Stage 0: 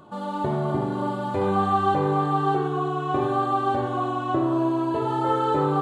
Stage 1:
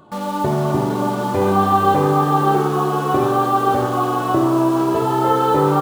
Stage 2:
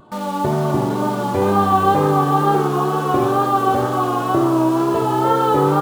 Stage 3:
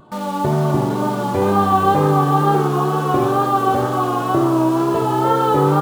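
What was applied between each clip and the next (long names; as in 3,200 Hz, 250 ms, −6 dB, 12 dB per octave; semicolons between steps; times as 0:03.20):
in parallel at −2.5 dB: bit-depth reduction 6 bits, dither none; on the sum: echo with shifted repeats 459 ms, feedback 49%, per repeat +66 Hz, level −12 dB; level +1.5 dB
pitch vibrato 2.1 Hz 39 cents
parametric band 150 Hz +3.5 dB 0.37 octaves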